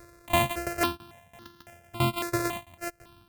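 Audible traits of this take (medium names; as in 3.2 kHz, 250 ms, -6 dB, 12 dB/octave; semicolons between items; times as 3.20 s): a buzz of ramps at a fixed pitch in blocks of 128 samples; tremolo saw down 3 Hz, depth 90%; notches that jump at a steady rate 3.6 Hz 830–2300 Hz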